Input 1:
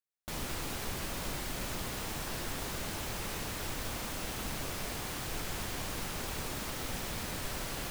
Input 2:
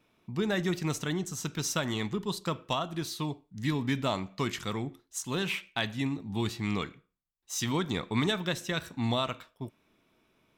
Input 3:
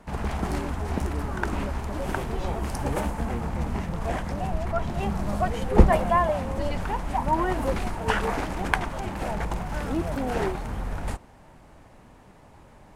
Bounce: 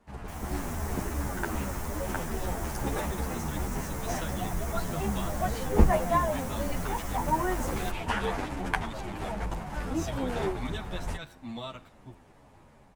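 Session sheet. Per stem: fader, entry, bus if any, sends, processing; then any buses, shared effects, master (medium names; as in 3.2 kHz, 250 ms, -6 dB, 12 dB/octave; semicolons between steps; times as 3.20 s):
-5.0 dB, 0.00 s, no send, high-order bell 3.4 kHz -12 dB 1.2 oct
-14.0 dB, 2.45 s, no send, none
-8.5 dB, 0.00 s, no send, none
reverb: none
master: level rider gain up to 7 dB; endless flanger 10 ms -2.6 Hz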